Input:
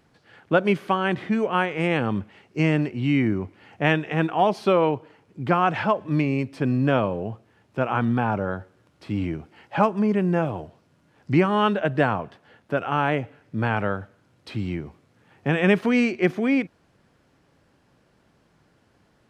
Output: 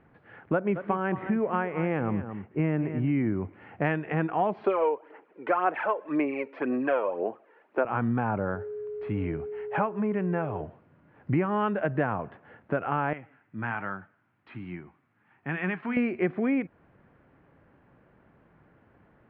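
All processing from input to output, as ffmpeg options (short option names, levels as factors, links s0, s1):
-filter_complex "[0:a]asettb=1/sr,asplit=3[s0][s1][s2];[s0]atrim=end=0.534[s3];[s1]atrim=start=0.53:end=3.27,asetpts=PTS-STARTPTS,afade=t=in:d=0.004:c=qsin,afade=t=out:st=2.736:d=0.004:c=qsin,lowpass=f=2000:p=1,aecho=1:1:223:0.211,atrim=end_sample=120834[s4];[s2]atrim=start=3.266[s5];[s3][s4]acrossfade=d=0.004:c1=hsin:c2=qsin[s6];[s6][s5]acrossfade=d=0.004:c1=qsin:c2=hsin,asettb=1/sr,asplit=3[s7][s8][s9];[s7]atrim=end=4.644[s10];[s8]atrim=start=4.64:end=7.85,asetpts=PTS-STARTPTS,afade=t=in:d=0.004:c=qsin,afade=t=out:st=3.206:d=0.004:c=qsin,highpass=f=330:w=0.5412,highpass=f=330:w=1.3066,aphaser=in_gain=1:out_gain=1:delay=2.2:decay=0.56:speed=1.9:type=sinusoidal[s11];[s9]atrim=start=7.846[s12];[s10][s11]acrossfade=d=0.004:c1=hsin:c2=qsin[s13];[s13][s12]acrossfade=d=0.004:c1=qsin:c2=hsin,asettb=1/sr,asplit=3[s14][s15][s16];[s14]atrim=end=8.554[s17];[s15]atrim=start=8.55:end=10.61,asetpts=PTS-STARTPTS,afade=t=in:d=0.004:c=qsin,afade=t=out:st=2.056:d=0.004:c=qsin,equalizer=f=260:w=0.5:g=-5,aeval=exprs='val(0)+0.0178*sin(2*PI*420*n/s)':c=same,acrusher=bits=9:mode=log:mix=0:aa=0.000001[s18];[s16]atrim=start=10.606[s19];[s17][s18]acrossfade=d=0.004:c1=hsin:c2=qsin[s20];[s20][s19]acrossfade=d=0.004:c1=qsin:c2=hsin,asettb=1/sr,asplit=3[s21][s22][s23];[s21]atrim=end=13.134[s24];[s22]atrim=start=13.13:end=15.97,asetpts=PTS-STARTPTS,afade=t=in:d=0.004:c=qsin,afade=t=out:st=2.836:d=0.004:c=qsin,flanger=delay=5.3:depth=4.3:regen=71:speed=1.2:shape=sinusoidal,highpass=f=380:p=1,equalizer=f=500:t=o:w=0.85:g=-13[s25];[s23]atrim=start=15.966[s26];[s24][s25]acrossfade=d=0.004:c1=hsin:c2=qsin[s27];[s27][s26]acrossfade=d=0.004:c1=qsin:c2=hsin,lowpass=f=2200:w=0.5412,lowpass=f=2200:w=1.3066,acompressor=threshold=0.0398:ratio=2.5,volume=1.26"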